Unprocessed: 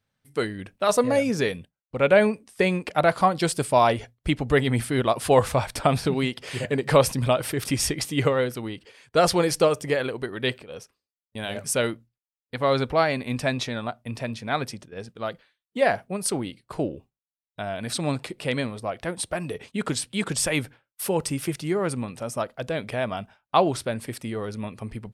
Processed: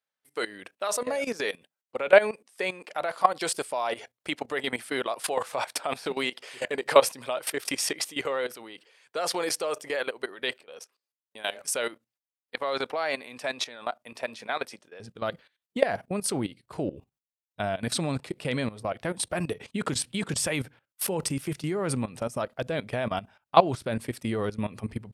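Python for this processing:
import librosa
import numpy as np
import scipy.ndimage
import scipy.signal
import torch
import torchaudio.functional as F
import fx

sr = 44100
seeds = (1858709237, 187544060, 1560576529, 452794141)

y = fx.highpass(x, sr, hz=fx.steps((0.0, 480.0), (15.0, 60.0)), slope=12)
y = fx.level_steps(y, sr, step_db=16)
y = F.gain(torch.from_numpy(y), 4.0).numpy()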